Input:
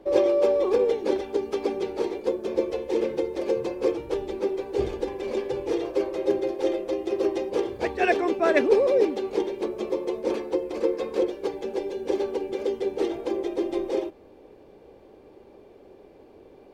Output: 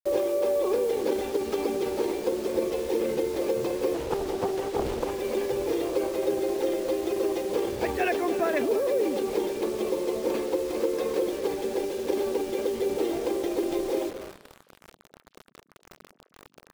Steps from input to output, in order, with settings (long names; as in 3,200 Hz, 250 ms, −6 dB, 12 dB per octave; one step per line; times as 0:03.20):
downward compressor 6 to 1, threshold −23 dBFS, peak gain reduction 9.5 dB
transient designer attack +1 dB, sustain +7 dB
bit reduction 7 bits
on a send: echo through a band-pass that steps 107 ms, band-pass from 200 Hz, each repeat 1.4 octaves, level −8 dB
0:03.94–0:05.11: on the sum: highs frequency-modulated by the lows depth 0.82 ms